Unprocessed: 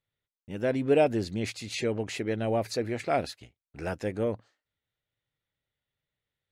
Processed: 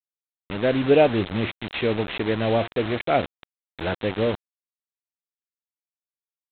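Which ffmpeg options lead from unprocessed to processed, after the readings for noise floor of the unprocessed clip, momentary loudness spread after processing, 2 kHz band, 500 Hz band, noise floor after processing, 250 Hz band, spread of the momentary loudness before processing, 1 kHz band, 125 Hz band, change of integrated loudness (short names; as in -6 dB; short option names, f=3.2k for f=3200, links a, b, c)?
under -85 dBFS, 13 LU, +8.0 dB, +6.0 dB, under -85 dBFS, +6.0 dB, 15 LU, +6.5 dB, +6.0 dB, +6.0 dB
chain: -af "bandreject=f=346.8:t=h:w=4,bandreject=f=693.6:t=h:w=4,bandreject=f=1.0404k:t=h:w=4,bandreject=f=1.3872k:t=h:w=4,aresample=8000,acrusher=bits=5:mix=0:aa=0.000001,aresample=44100,volume=6dB"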